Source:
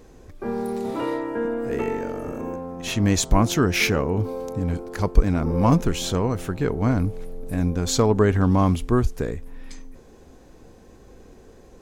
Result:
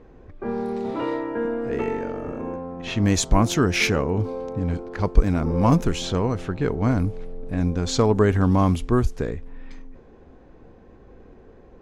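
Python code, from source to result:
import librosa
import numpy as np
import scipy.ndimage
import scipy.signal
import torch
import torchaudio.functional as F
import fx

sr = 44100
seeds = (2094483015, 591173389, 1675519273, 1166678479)

y = fx.env_lowpass(x, sr, base_hz=2100.0, full_db=-14.0)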